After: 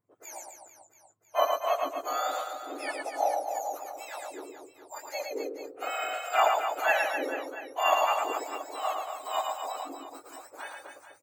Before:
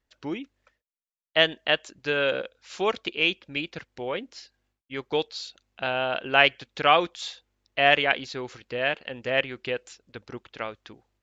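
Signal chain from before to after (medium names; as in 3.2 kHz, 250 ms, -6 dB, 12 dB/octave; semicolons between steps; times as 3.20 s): spectrum inverted on a logarithmic axis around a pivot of 1.4 kHz; high-order bell 4.1 kHz -12.5 dB 1.1 oct; reverse bouncing-ball echo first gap 110 ms, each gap 1.3×, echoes 5; trim -3 dB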